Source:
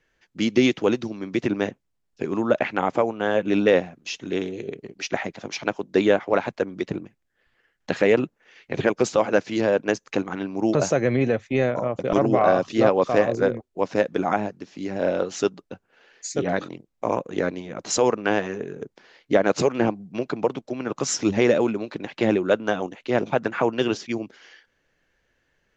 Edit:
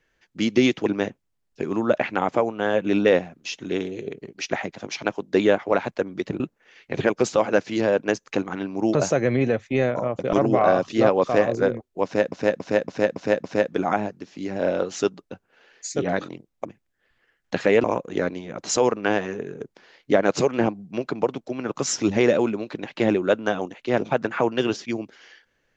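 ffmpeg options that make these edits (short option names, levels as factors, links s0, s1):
-filter_complex "[0:a]asplit=10[s0][s1][s2][s3][s4][s5][s6][s7][s8][s9];[s0]atrim=end=0.862[s10];[s1]atrim=start=1.468:end=7.012[s11];[s2]atrim=start=8.198:end=14.122[s12];[s3]atrim=start=13.838:end=14.122[s13];[s4]atrim=start=13.838:end=14.122[s14];[s5]atrim=start=13.838:end=14.122[s15];[s6]atrim=start=13.838:end=14.122[s16];[s7]atrim=start=13.838:end=17.052[s17];[s8]atrim=start=7.008:end=8.202[s18];[s9]atrim=start=17.048[s19];[s10][s11]acrossfade=d=0.004:c1=hsin:c2=hsin[s20];[s20][s12]acrossfade=d=0.004:c1=hsin:c2=hsin[s21];[s21][s13]acrossfade=d=0.004:c1=hsin:c2=hsin[s22];[s22][s14]acrossfade=d=0.004:c1=hsin:c2=hsin[s23];[s23][s15]acrossfade=d=0.004:c1=hsin:c2=hsin[s24];[s24][s16]acrossfade=d=0.004:c1=hsin:c2=hsin[s25];[s25][s17]acrossfade=d=0.004:c1=hsin:c2=hsin[s26];[s26][s18]acrossfade=d=0.004:c1=hsin:c2=hsin[s27];[s27][s19]acrossfade=d=0.004:c1=hsin:c2=hsin"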